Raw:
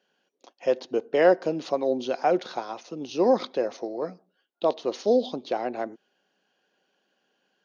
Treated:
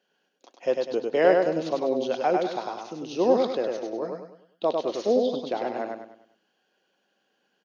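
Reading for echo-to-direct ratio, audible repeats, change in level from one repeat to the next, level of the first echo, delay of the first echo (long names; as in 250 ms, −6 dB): −3.0 dB, 4, −8.0 dB, −3.5 dB, 100 ms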